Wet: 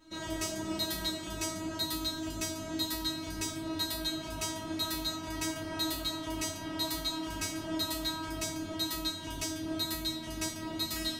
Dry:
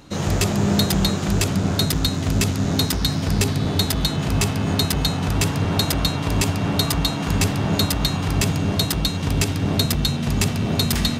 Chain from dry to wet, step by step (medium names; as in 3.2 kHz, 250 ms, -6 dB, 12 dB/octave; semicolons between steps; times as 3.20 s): feedback comb 320 Hz, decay 0.41 s, harmonics all, mix 100%; trim +5 dB